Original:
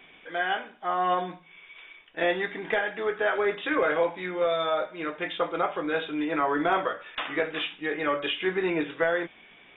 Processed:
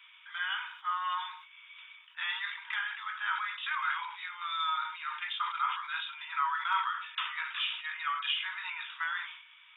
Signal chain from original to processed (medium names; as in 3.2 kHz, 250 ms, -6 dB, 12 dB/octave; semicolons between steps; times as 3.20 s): rippled Chebyshev high-pass 910 Hz, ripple 6 dB; decay stretcher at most 76 dB/s